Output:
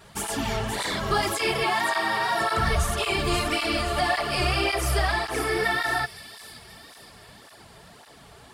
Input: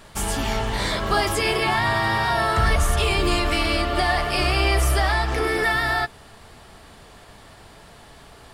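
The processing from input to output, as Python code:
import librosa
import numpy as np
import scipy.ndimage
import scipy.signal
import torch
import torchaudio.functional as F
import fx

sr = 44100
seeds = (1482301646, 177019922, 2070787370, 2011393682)

y = fx.highpass(x, sr, hz=280.0, slope=12, at=(1.64, 2.41))
y = fx.echo_wet_highpass(y, sr, ms=527, feedback_pct=52, hz=4600.0, wet_db=-6.0)
y = fx.flanger_cancel(y, sr, hz=1.8, depth_ms=4.1)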